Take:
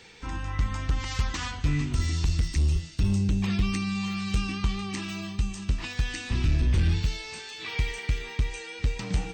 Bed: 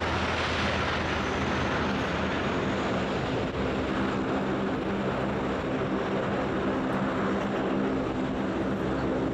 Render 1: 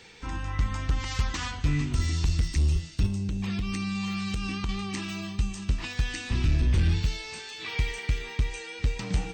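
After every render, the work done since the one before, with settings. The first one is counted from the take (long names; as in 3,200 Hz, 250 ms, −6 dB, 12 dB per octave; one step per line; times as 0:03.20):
0:03.06–0:04.69: downward compressor, threshold −26 dBFS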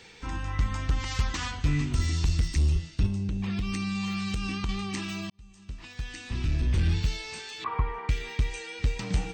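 0:02.68–0:03.56: low-pass filter 5,000 Hz → 3,200 Hz 6 dB per octave
0:05.30–0:07.13: fade in
0:07.64–0:08.09: low-pass with resonance 1,100 Hz, resonance Q 13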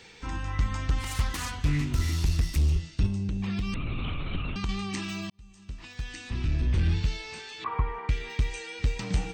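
0:00.98–0:02.81: phase distortion by the signal itself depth 0.15 ms
0:03.74–0:04.56: linear-prediction vocoder at 8 kHz whisper
0:06.30–0:08.30: high-shelf EQ 6,700 Hz −9.5 dB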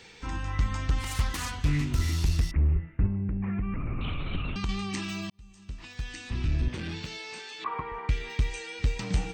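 0:02.51–0:04.01: Butterworth low-pass 2,200 Hz 48 dB per octave
0:06.68–0:07.92: high-pass filter 200 Hz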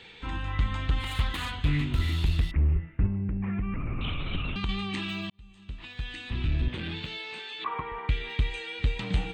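high shelf with overshoot 4,400 Hz −7 dB, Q 3
notch filter 5,800 Hz, Q 13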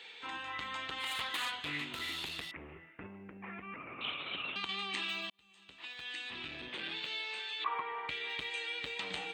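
high-pass filter 570 Hz 12 dB per octave
parametric band 1,100 Hz −2.5 dB 2.1 octaves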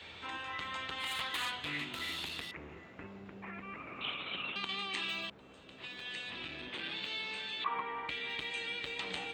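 mix in bed −28.5 dB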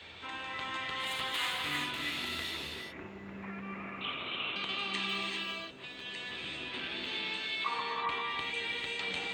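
reverb whose tail is shaped and stops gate 430 ms rising, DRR −0.5 dB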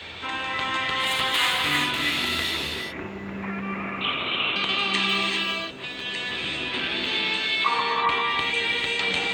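level +11.5 dB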